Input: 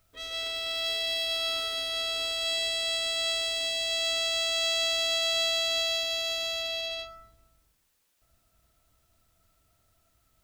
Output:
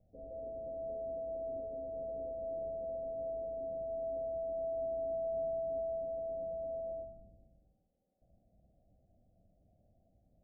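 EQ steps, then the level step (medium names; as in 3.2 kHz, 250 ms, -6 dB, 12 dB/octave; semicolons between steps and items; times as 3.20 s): rippled Chebyshev low-pass 790 Hz, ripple 9 dB; +8.5 dB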